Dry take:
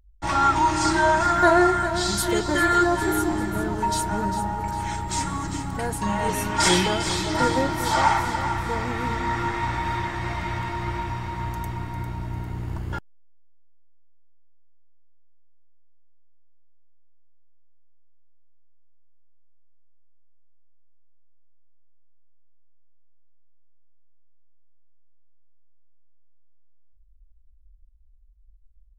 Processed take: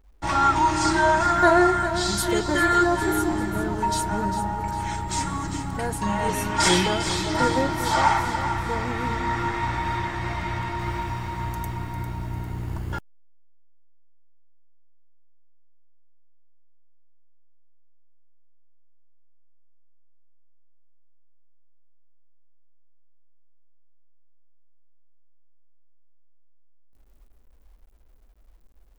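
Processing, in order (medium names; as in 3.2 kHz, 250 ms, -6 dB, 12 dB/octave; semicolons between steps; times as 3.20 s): bit crusher 11-bit; treble shelf 8.7 kHz -2 dB, from 10.79 s +6 dB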